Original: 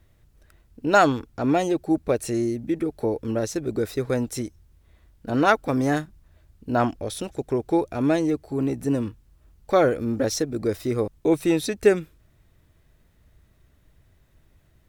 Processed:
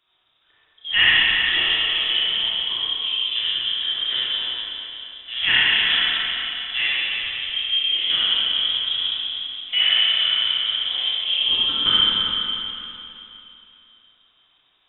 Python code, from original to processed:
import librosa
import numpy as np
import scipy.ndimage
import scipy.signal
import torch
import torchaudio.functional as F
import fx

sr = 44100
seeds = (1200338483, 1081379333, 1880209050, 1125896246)

y = fx.highpass(x, sr, hz=380.0, slope=6)
y = fx.echo_feedback(y, sr, ms=176, feedback_pct=58, wet_db=-10.5)
y = fx.formant_shift(y, sr, semitones=5)
y = fx.rev_schroeder(y, sr, rt60_s=3.0, comb_ms=28, drr_db=-9.0)
y = fx.freq_invert(y, sr, carrier_hz=3700)
y = y * 10.0 ** (-4.5 / 20.0)